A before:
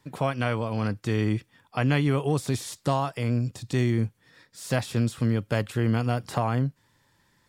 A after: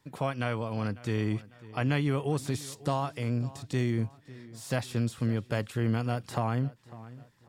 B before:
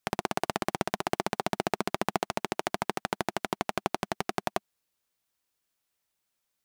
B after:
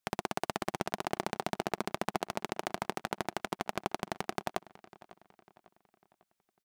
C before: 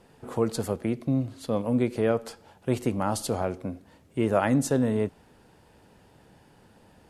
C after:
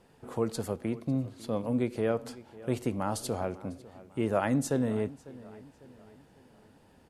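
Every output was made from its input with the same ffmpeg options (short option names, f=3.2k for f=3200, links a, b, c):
-filter_complex "[0:a]asplit=2[a][b];[b]adelay=549,lowpass=f=4.6k:p=1,volume=-19dB,asplit=2[c][d];[d]adelay=549,lowpass=f=4.6k:p=1,volume=0.45,asplit=2[e][f];[f]adelay=549,lowpass=f=4.6k:p=1,volume=0.45,asplit=2[g][h];[h]adelay=549,lowpass=f=4.6k:p=1,volume=0.45[i];[a][c][e][g][i]amix=inputs=5:normalize=0,volume=-4.5dB"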